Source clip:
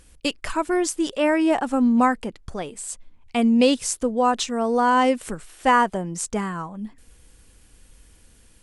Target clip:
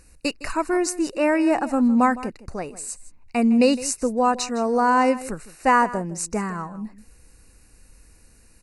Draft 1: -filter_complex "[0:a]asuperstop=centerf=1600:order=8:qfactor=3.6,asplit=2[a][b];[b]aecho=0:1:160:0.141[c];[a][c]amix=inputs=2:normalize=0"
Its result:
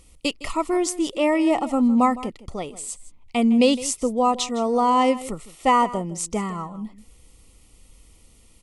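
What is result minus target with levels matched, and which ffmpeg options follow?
2000 Hz band -4.5 dB
-filter_complex "[0:a]asuperstop=centerf=3300:order=8:qfactor=3.6,asplit=2[a][b];[b]aecho=0:1:160:0.141[c];[a][c]amix=inputs=2:normalize=0"

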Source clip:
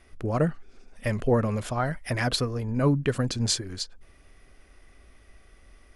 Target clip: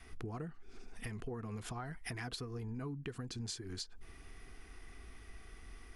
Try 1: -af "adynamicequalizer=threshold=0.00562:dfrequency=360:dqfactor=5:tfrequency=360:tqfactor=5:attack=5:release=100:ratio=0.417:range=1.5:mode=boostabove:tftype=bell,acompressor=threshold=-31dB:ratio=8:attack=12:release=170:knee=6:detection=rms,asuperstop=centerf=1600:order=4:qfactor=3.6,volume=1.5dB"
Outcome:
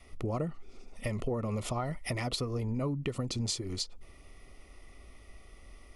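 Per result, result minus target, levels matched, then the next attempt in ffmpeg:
compressor: peak gain reduction -9 dB; 2000 Hz band -5.0 dB
-af "adynamicequalizer=threshold=0.00562:dfrequency=360:dqfactor=5:tfrequency=360:tqfactor=5:attack=5:release=100:ratio=0.417:range=1.5:mode=boostabove:tftype=bell,acompressor=threshold=-41.5dB:ratio=8:attack=12:release=170:knee=6:detection=rms,asuperstop=centerf=1600:order=4:qfactor=3.6,volume=1.5dB"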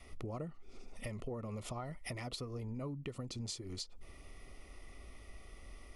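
2000 Hz band -3.5 dB
-af "adynamicequalizer=threshold=0.00562:dfrequency=360:dqfactor=5:tfrequency=360:tqfactor=5:attack=5:release=100:ratio=0.417:range=1.5:mode=boostabove:tftype=bell,acompressor=threshold=-41.5dB:ratio=8:attack=12:release=170:knee=6:detection=rms,asuperstop=centerf=570:order=4:qfactor=3.6,volume=1.5dB"

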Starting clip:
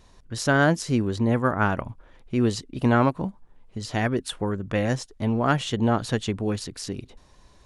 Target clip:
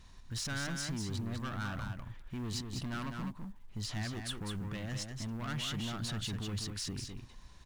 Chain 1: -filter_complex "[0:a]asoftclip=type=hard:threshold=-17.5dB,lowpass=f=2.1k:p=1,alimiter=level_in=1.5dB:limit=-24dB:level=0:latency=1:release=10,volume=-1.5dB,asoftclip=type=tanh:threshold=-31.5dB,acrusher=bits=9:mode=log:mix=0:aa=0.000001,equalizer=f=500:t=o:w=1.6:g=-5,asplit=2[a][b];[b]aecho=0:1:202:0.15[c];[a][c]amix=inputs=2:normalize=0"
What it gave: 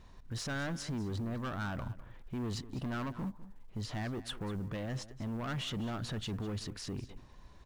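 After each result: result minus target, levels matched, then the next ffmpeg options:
echo-to-direct -11 dB; 8000 Hz band -6.0 dB; 500 Hz band +5.0 dB
-filter_complex "[0:a]asoftclip=type=hard:threshold=-17.5dB,lowpass=f=2.1k:p=1,alimiter=level_in=1.5dB:limit=-24dB:level=0:latency=1:release=10,volume=-1.5dB,asoftclip=type=tanh:threshold=-31.5dB,acrusher=bits=9:mode=log:mix=0:aa=0.000001,equalizer=f=500:t=o:w=1.6:g=-5,asplit=2[a][b];[b]aecho=0:1:202:0.531[c];[a][c]amix=inputs=2:normalize=0"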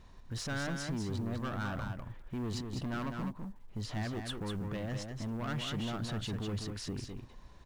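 8000 Hz band -6.0 dB; 500 Hz band +5.5 dB
-filter_complex "[0:a]asoftclip=type=hard:threshold=-17.5dB,lowpass=f=6.4k:p=1,alimiter=level_in=1.5dB:limit=-24dB:level=0:latency=1:release=10,volume=-1.5dB,asoftclip=type=tanh:threshold=-31.5dB,acrusher=bits=9:mode=log:mix=0:aa=0.000001,equalizer=f=500:t=o:w=1.6:g=-5,asplit=2[a][b];[b]aecho=0:1:202:0.531[c];[a][c]amix=inputs=2:normalize=0"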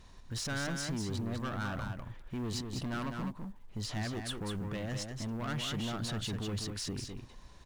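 500 Hz band +4.5 dB
-filter_complex "[0:a]asoftclip=type=hard:threshold=-17.5dB,lowpass=f=6.4k:p=1,alimiter=level_in=1.5dB:limit=-24dB:level=0:latency=1:release=10,volume=-1.5dB,asoftclip=type=tanh:threshold=-31.5dB,acrusher=bits=9:mode=log:mix=0:aa=0.000001,equalizer=f=500:t=o:w=1.6:g=-12,asplit=2[a][b];[b]aecho=0:1:202:0.531[c];[a][c]amix=inputs=2:normalize=0"

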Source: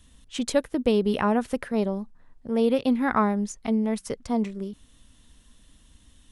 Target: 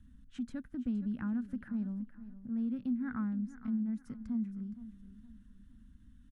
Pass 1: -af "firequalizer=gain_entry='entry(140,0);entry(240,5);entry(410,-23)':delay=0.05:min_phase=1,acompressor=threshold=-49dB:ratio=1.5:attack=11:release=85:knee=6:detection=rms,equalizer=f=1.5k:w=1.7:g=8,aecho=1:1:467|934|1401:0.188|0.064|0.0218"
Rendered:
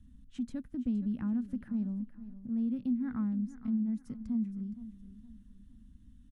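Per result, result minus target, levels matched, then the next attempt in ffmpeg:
2000 Hz band -8.5 dB; compressor: peak gain reduction -2.5 dB
-af "firequalizer=gain_entry='entry(140,0);entry(240,5);entry(410,-23)':delay=0.05:min_phase=1,acompressor=threshold=-49dB:ratio=1.5:attack=11:release=85:knee=6:detection=rms,equalizer=f=1.5k:w=1.7:g=18.5,aecho=1:1:467|934|1401:0.188|0.064|0.0218"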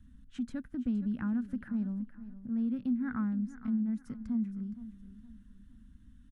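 compressor: peak gain reduction -2.5 dB
-af "firequalizer=gain_entry='entry(140,0);entry(240,5);entry(410,-23)':delay=0.05:min_phase=1,acompressor=threshold=-57dB:ratio=1.5:attack=11:release=85:knee=6:detection=rms,equalizer=f=1.5k:w=1.7:g=18.5,aecho=1:1:467|934|1401:0.188|0.064|0.0218"

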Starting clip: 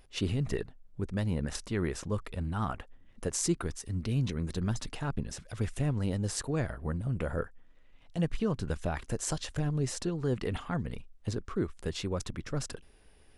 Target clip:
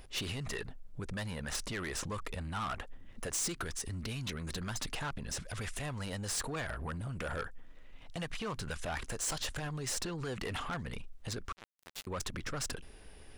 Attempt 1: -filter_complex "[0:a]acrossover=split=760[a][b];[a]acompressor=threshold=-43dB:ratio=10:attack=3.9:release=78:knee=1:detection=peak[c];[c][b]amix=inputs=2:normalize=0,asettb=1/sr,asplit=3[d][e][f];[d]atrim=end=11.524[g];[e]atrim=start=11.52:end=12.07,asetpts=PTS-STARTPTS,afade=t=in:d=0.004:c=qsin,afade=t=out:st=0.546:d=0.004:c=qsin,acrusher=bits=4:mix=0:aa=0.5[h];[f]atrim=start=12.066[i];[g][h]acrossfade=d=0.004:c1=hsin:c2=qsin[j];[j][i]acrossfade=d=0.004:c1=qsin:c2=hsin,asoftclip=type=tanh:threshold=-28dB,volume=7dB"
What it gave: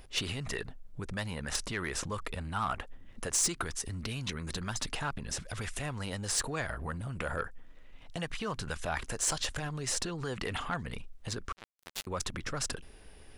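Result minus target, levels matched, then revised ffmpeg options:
soft clip: distortion -9 dB
-filter_complex "[0:a]acrossover=split=760[a][b];[a]acompressor=threshold=-43dB:ratio=10:attack=3.9:release=78:knee=1:detection=peak[c];[c][b]amix=inputs=2:normalize=0,asettb=1/sr,asplit=3[d][e][f];[d]atrim=end=11.524[g];[e]atrim=start=11.52:end=12.07,asetpts=PTS-STARTPTS,afade=t=in:d=0.004:c=qsin,afade=t=out:st=0.546:d=0.004:c=qsin,acrusher=bits=4:mix=0:aa=0.5[h];[f]atrim=start=12.066[i];[g][h]acrossfade=d=0.004:c1=hsin:c2=qsin[j];[j][i]acrossfade=d=0.004:c1=qsin:c2=hsin,asoftclip=type=tanh:threshold=-38.5dB,volume=7dB"

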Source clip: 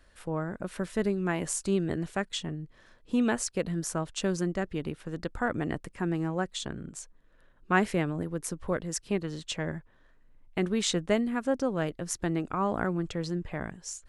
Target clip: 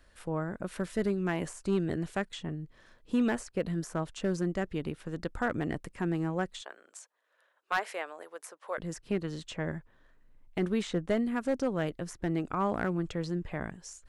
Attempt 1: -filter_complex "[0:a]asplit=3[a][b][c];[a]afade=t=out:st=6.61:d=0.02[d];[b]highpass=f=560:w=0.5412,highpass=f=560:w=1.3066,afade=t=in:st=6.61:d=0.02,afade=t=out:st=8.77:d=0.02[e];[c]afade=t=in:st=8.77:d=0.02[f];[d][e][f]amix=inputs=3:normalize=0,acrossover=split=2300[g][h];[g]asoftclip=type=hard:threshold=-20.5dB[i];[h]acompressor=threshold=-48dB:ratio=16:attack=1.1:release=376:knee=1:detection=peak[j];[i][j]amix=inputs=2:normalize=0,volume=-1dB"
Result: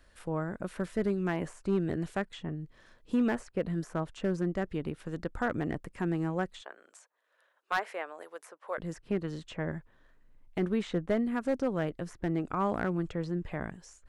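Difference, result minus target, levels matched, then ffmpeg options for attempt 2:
compressor: peak gain reduction +9 dB
-filter_complex "[0:a]asplit=3[a][b][c];[a]afade=t=out:st=6.61:d=0.02[d];[b]highpass=f=560:w=0.5412,highpass=f=560:w=1.3066,afade=t=in:st=6.61:d=0.02,afade=t=out:st=8.77:d=0.02[e];[c]afade=t=in:st=8.77:d=0.02[f];[d][e][f]amix=inputs=3:normalize=0,acrossover=split=2300[g][h];[g]asoftclip=type=hard:threshold=-20.5dB[i];[h]acompressor=threshold=-38.5dB:ratio=16:attack=1.1:release=376:knee=1:detection=peak[j];[i][j]amix=inputs=2:normalize=0,volume=-1dB"

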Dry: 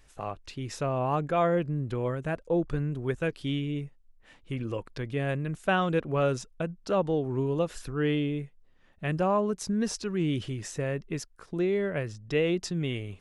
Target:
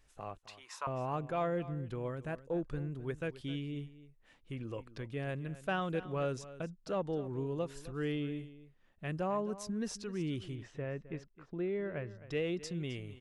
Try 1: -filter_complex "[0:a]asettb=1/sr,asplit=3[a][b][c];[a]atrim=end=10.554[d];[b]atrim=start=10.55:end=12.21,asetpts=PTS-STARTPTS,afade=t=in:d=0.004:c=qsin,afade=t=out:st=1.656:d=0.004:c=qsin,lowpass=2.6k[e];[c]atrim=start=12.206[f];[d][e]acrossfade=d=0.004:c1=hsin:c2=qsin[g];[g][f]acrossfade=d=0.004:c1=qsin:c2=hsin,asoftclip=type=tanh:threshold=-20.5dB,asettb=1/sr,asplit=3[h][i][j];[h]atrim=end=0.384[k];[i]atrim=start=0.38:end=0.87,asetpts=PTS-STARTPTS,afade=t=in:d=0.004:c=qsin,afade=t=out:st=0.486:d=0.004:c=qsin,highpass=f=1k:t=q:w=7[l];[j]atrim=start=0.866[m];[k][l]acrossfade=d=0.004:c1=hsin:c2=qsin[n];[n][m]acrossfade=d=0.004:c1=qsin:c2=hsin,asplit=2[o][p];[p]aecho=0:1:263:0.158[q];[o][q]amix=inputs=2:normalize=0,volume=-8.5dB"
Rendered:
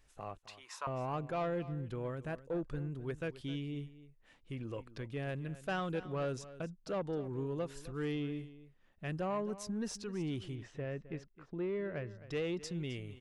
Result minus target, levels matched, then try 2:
soft clip: distortion +14 dB
-filter_complex "[0:a]asettb=1/sr,asplit=3[a][b][c];[a]atrim=end=10.554[d];[b]atrim=start=10.55:end=12.21,asetpts=PTS-STARTPTS,afade=t=in:d=0.004:c=qsin,afade=t=out:st=1.656:d=0.004:c=qsin,lowpass=2.6k[e];[c]atrim=start=12.206[f];[d][e]acrossfade=d=0.004:c1=hsin:c2=qsin[g];[g][f]acrossfade=d=0.004:c1=qsin:c2=hsin,asoftclip=type=tanh:threshold=-12dB,asettb=1/sr,asplit=3[h][i][j];[h]atrim=end=0.384[k];[i]atrim=start=0.38:end=0.87,asetpts=PTS-STARTPTS,afade=t=in:d=0.004:c=qsin,afade=t=out:st=0.486:d=0.004:c=qsin,highpass=f=1k:t=q:w=7[l];[j]atrim=start=0.866[m];[k][l]acrossfade=d=0.004:c1=hsin:c2=qsin[n];[n][m]acrossfade=d=0.004:c1=qsin:c2=hsin,asplit=2[o][p];[p]aecho=0:1:263:0.158[q];[o][q]amix=inputs=2:normalize=0,volume=-8.5dB"

